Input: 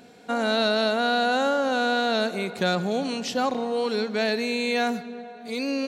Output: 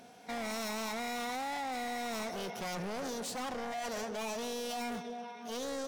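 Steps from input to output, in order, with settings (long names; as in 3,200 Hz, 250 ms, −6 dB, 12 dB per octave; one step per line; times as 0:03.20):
dynamic equaliser 1,600 Hz, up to −3 dB, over −36 dBFS, Q 0.81
gain into a clipping stage and back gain 31.5 dB
formants moved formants +6 semitones
level −5 dB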